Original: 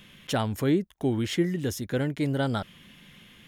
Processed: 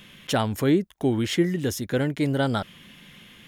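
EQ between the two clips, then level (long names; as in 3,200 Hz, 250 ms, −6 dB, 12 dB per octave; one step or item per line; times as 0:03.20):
low-shelf EQ 130 Hz −4 dB
+4.0 dB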